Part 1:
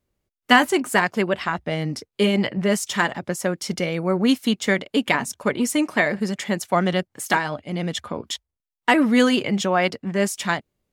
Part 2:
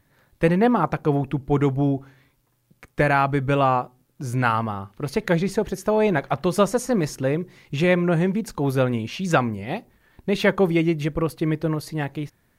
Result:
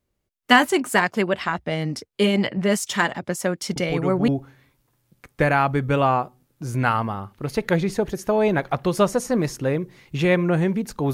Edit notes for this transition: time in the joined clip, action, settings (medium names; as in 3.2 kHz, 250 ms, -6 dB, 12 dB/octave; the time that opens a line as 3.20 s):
part 1
3.76 s: add part 2 from 1.35 s 0.52 s -7.5 dB
4.28 s: go over to part 2 from 1.87 s